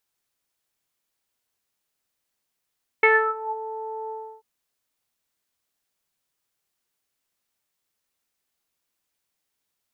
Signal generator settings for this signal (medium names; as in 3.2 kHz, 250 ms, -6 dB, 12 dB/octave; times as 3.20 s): synth note saw A4 24 dB/octave, low-pass 800 Hz, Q 7.8, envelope 1.5 oct, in 0.52 s, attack 4.6 ms, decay 0.30 s, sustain -18 dB, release 0.32 s, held 1.07 s